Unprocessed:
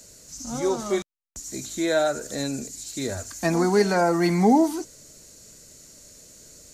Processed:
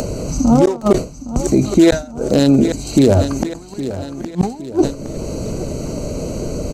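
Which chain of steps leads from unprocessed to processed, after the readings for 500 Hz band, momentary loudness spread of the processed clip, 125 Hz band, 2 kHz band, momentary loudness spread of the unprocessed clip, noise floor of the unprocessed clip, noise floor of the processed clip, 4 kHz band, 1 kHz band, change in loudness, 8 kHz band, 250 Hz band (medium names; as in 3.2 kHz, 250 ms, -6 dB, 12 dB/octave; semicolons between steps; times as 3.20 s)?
+7.5 dB, 13 LU, +12.5 dB, 0.0 dB, 16 LU, -50 dBFS, -34 dBFS, +6.0 dB, +1.0 dB, +7.0 dB, +3.5 dB, +10.5 dB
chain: local Wiener filter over 25 samples; in parallel at +1.5 dB: upward compressor, threshold -24 dBFS; on the sum: inverted gate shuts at -9 dBFS, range -39 dB; on a send: feedback delay 814 ms, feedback 45%, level -14.5 dB; on the sum: loudness maximiser +15.5 dB; decay stretcher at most 150 dB/s; trim -1.5 dB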